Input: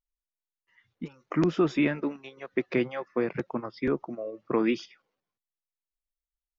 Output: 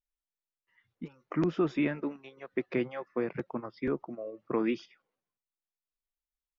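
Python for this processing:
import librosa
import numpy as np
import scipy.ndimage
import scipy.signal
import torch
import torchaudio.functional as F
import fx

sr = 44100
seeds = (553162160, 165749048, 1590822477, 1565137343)

y = fx.high_shelf(x, sr, hz=5300.0, db=-10.5)
y = F.gain(torch.from_numpy(y), -4.0).numpy()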